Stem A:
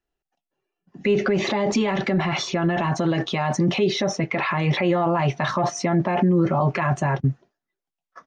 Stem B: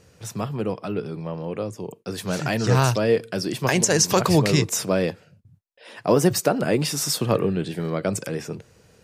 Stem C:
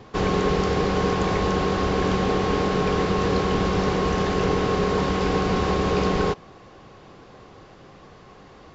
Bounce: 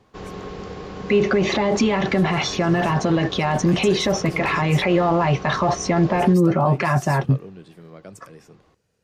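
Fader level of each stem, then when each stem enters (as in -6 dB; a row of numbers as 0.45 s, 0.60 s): +2.5 dB, -16.5 dB, -12.5 dB; 0.05 s, 0.00 s, 0.00 s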